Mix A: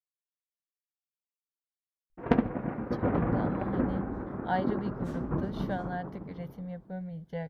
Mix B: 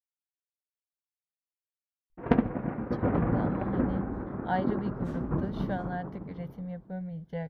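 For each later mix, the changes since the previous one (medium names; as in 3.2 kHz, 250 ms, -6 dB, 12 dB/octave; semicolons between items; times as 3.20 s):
master: add tone controls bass +2 dB, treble -5 dB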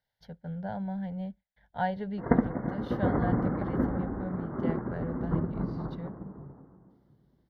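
speech: entry -2.70 s; background: add brick-wall FIR low-pass 2.2 kHz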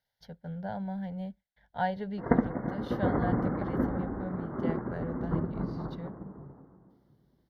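master: add tone controls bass -2 dB, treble +5 dB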